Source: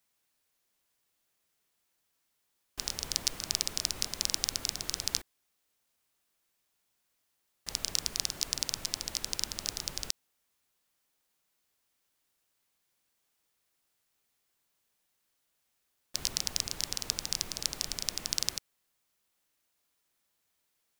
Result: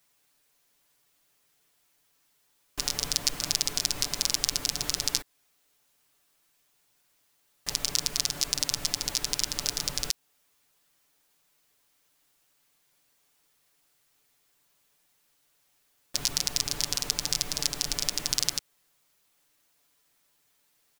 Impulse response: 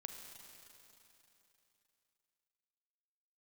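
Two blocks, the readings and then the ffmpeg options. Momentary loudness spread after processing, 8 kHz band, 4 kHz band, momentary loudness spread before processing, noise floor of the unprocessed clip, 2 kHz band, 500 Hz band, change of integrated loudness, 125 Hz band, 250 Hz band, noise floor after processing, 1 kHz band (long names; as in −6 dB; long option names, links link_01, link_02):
5 LU, +5.0 dB, +5.0 dB, 6 LU, −79 dBFS, +5.5 dB, +5.5 dB, +5.0 dB, +6.0 dB, +6.0 dB, −70 dBFS, +6.0 dB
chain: -filter_complex "[0:a]aecho=1:1:6.9:0.56,asplit=2[link_01][link_02];[link_02]alimiter=limit=-15.5dB:level=0:latency=1:release=254,volume=2.5dB[link_03];[link_01][link_03]amix=inputs=2:normalize=0"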